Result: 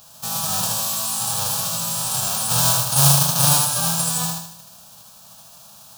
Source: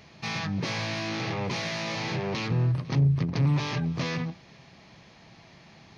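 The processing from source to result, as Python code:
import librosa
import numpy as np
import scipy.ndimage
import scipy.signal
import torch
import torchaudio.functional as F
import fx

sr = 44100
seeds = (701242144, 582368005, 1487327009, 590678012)

p1 = fx.envelope_flatten(x, sr, power=0.1)
p2 = fx.fixed_phaser(p1, sr, hz=850.0, stages=4)
p3 = p2 + fx.echo_feedback(p2, sr, ms=78, feedback_pct=45, wet_db=-3, dry=0)
y = p3 * 10.0 ** (7.0 / 20.0)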